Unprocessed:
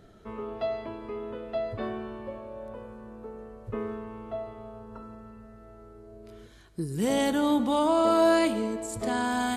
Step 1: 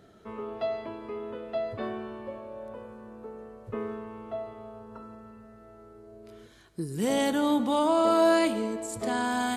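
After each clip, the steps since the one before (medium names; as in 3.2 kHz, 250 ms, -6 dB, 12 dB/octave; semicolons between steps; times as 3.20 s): high-pass 130 Hz 6 dB/octave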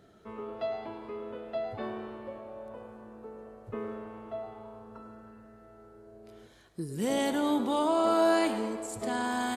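frequency-shifting echo 105 ms, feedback 55%, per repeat +100 Hz, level -15 dB; trim -3 dB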